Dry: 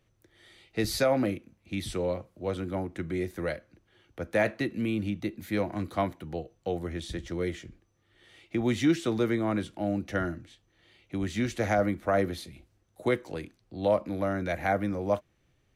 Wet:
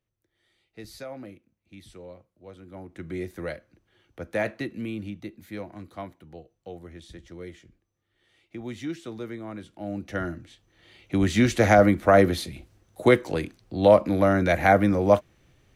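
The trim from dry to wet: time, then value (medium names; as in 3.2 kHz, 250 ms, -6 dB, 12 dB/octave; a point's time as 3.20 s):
2.60 s -14 dB
3.12 s -1.5 dB
4.57 s -1.5 dB
5.84 s -9 dB
9.59 s -9 dB
9.99 s -2 dB
11.20 s +9 dB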